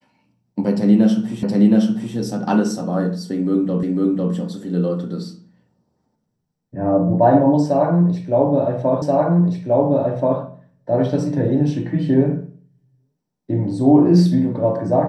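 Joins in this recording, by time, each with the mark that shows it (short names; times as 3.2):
1.43 repeat of the last 0.72 s
3.83 repeat of the last 0.5 s
9.02 repeat of the last 1.38 s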